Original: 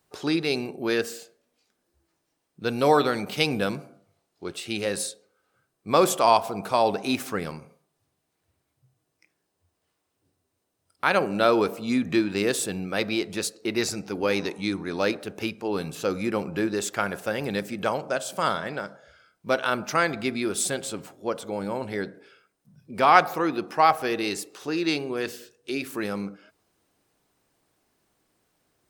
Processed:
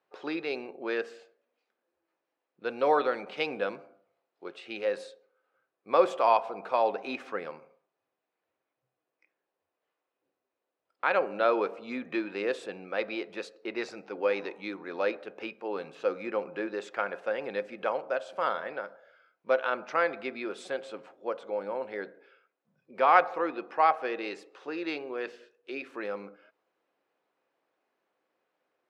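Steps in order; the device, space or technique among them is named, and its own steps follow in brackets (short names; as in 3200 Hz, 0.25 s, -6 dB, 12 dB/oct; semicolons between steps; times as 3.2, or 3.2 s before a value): tin-can telephone (BPF 410–2400 Hz; small resonant body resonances 520/2500 Hz, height 8 dB, ringing for 90 ms); gain -4 dB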